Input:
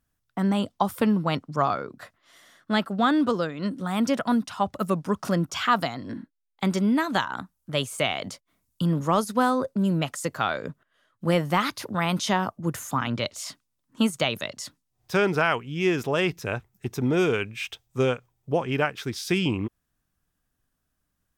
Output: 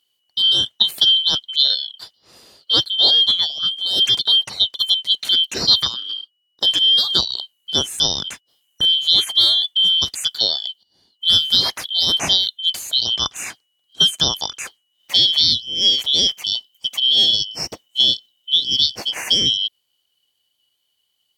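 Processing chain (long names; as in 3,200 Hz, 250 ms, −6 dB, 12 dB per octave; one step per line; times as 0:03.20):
band-splitting scrambler in four parts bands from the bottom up 3412
high-pass filter 55 Hz
level +7 dB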